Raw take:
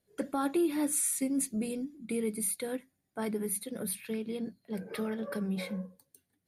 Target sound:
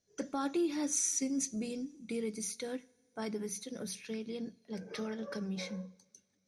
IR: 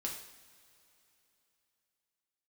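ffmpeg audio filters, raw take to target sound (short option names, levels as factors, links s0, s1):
-filter_complex "[0:a]lowpass=f=6000:t=q:w=12,asplit=2[s0][s1];[1:a]atrim=start_sample=2205[s2];[s1][s2]afir=irnorm=-1:irlink=0,volume=0.15[s3];[s0][s3]amix=inputs=2:normalize=0,volume=0.562"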